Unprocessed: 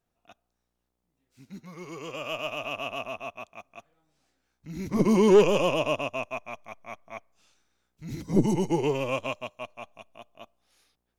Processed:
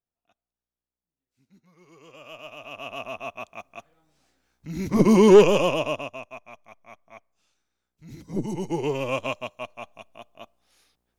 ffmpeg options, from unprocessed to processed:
-af "volume=5.31,afade=t=in:st=1.75:d=0.91:silence=0.421697,afade=t=in:st=2.66:d=0.87:silence=0.237137,afade=t=out:st=5.35:d=0.86:silence=0.266073,afade=t=in:st=8.47:d=0.78:silence=0.334965"

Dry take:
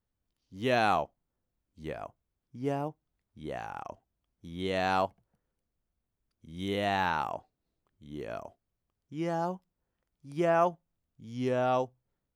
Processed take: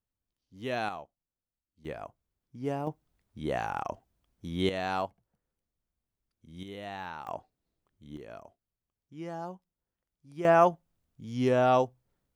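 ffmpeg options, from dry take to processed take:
-af "asetnsamples=n=441:p=0,asendcmd='0.89 volume volume -13dB;1.85 volume volume -1dB;2.87 volume volume 6.5dB;4.69 volume volume -3.5dB;6.63 volume volume -11dB;7.27 volume volume -0.5dB;8.17 volume volume -7dB;10.45 volume volume 4.5dB',volume=0.501"

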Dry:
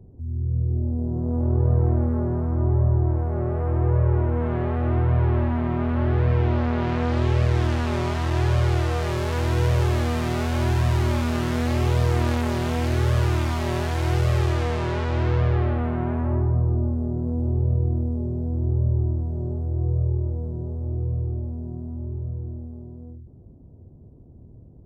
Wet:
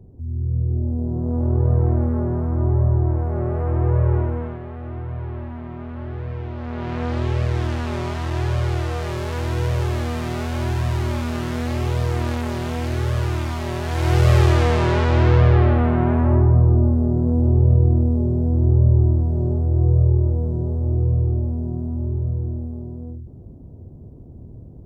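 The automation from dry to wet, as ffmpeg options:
-af "volume=7.94,afade=t=out:st=4.15:d=0.44:silence=0.281838,afade=t=in:st=6.56:d=0.49:silence=0.398107,afade=t=in:st=13.82:d=0.49:silence=0.398107"

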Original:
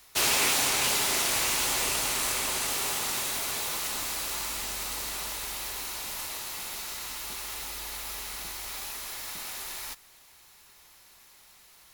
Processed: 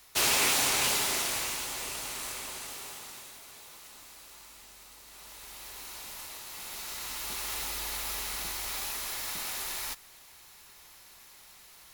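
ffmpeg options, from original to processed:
-af "volume=8.91,afade=t=out:st=0.83:d=0.84:silence=0.398107,afade=t=out:st=2.27:d=1.12:silence=0.354813,afade=t=in:st=5.05:d=0.91:silence=0.281838,afade=t=in:st=6.46:d=1.08:silence=0.354813"

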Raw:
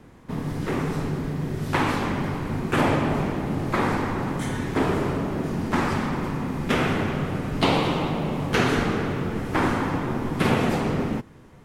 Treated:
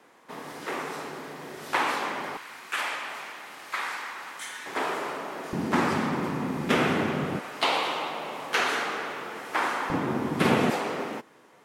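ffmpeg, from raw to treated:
-af "asetnsamples=n=441:p=0,asendcmd='2.37 highpass f 1500;4.66 highpass f 660;5.53 highpass f 180;7.39 highpass f 700;9.9 highpass f 170;10.7 highpass f 470',highpass=570"

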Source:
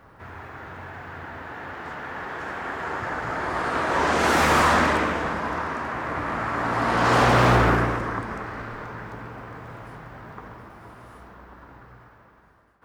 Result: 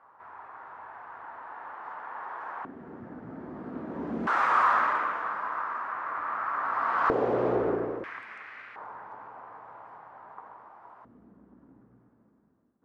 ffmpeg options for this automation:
-af "asetnsamples=n=441:p=0,asendcmd='2.65 bandpass f 230;4.27 bandpass f 1200;7.1 bandpass f 430;8.04 bandpass f 2300;8.76 bandpass f 900;11.05 bandpass f 240',bandpass=f=990:t=q:w=2.8:csg=0"

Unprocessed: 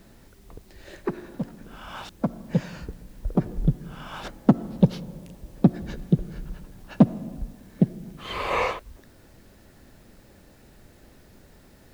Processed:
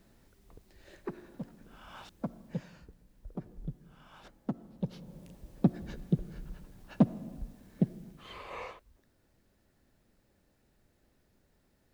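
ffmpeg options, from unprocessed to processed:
-af "volume=0.891,afade=t=out:st=2.28:d=0.6:silence=0.446684,afade=t=in:st=4.82:d=0.45:silence=0.316228,afade=t=out:st=7.96:d=0.48:silence=0.316228"

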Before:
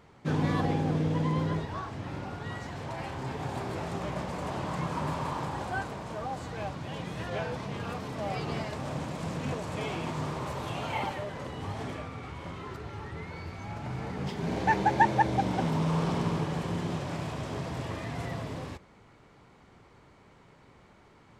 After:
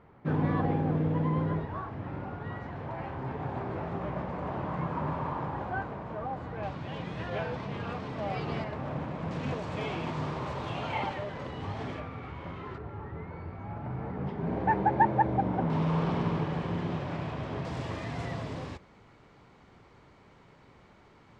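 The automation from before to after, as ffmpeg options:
-af "asetnsamples=n=441:p=0,asendcmd='6.63 lowpass f 3600;8.64 lowpass f 2200;9.31 lowpass f 4300;12 lowpass f 2800;12.78 lowpass f 1400;15.7 lowpass f 3100;17.65 lowpass f 6500',lowpass=1800"

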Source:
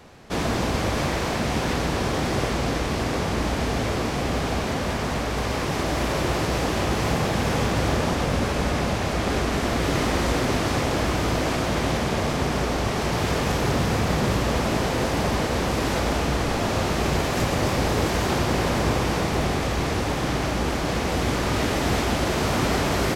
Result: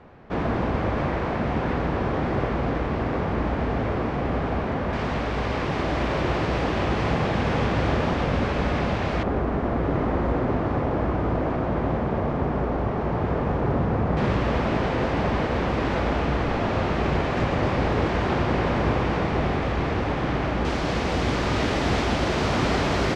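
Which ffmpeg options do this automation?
-af "asetnsamples=n=441:p=0,asendcmd='4.93 lowpass f 3100;9.23 lowpass f 1200;14.17 lowpass f 2600;20.65 lowpass f 4900',lowpass=1800"

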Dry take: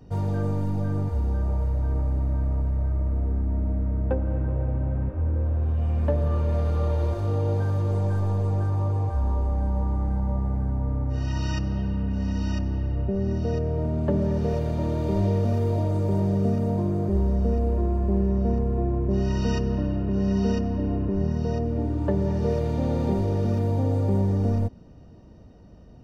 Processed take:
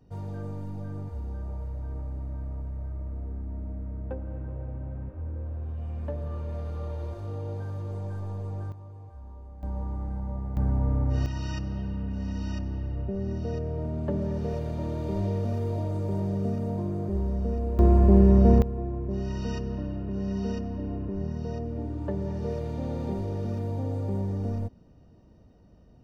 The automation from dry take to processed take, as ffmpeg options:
-af "asetnsamples=n=441:p=0,asendcmd='8.72 volume volume -20dB;9.63 volume volume -7.5dB;10.57 volume volume 1dB;11.26 volume volume -5.5dB;17.79 volume volume 6dB;18.62 volume volume -7dB',volume=0.316"

